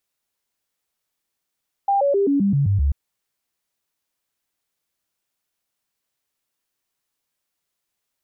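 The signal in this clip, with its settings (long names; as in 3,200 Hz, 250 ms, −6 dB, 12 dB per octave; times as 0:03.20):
stepped sweep 796 Hz down, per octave 2, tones 8, 0.13 s, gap 0.00 s −15 dBFS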